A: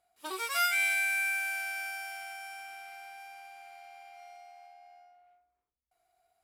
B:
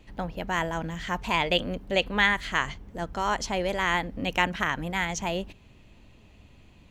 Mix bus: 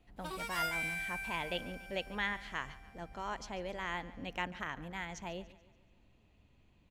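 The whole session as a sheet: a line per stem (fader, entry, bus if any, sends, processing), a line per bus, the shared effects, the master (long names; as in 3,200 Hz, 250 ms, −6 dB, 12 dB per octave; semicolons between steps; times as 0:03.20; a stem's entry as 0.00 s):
−2.5 dB, 0.00 s, no send, no echo send, automatic ducking −12 dB, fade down 1.75 s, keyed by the second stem
−13.0 dB, 0.00 s, no send, echo send −18 dB, no processing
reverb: not used
echo: repeating echo 143 ms, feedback 47%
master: high-shelf EQ 5,400 Hz −5.5 dB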